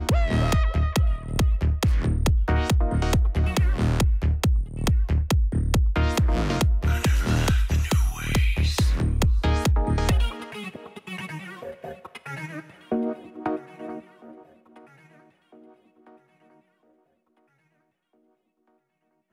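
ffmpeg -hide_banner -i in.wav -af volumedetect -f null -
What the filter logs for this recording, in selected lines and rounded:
mean_volume: -23.6 dB
max_volume: -14.3 dB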